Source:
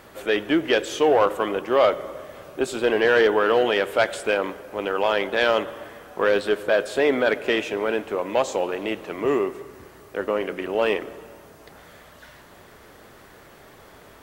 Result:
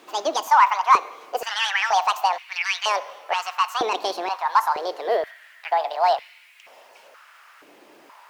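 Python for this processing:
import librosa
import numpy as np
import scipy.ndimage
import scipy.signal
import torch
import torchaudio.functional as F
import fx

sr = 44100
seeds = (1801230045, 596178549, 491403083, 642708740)

y = fx.speed_glide(x, sr, from_pct=198, to_pct=145)
y = fx.filter_held_highpass(y, sr, hz=2.1, low_hz=320.0, high_hz=2300.0)
y = F.gain(torch.from_numpy(y), -5.0).numpy()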